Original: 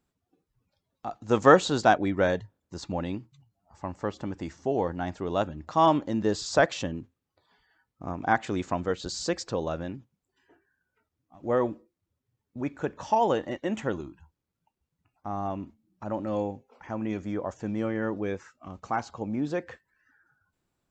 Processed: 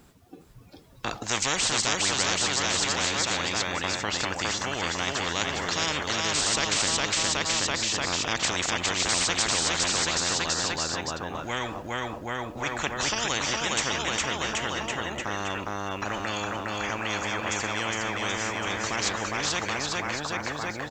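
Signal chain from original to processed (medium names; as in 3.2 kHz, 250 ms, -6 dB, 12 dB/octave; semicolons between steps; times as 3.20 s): bouncing-ball echo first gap 410 ms, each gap 0.9×, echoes 5; spectrum-flattening compressor 10:1; trim -6 dB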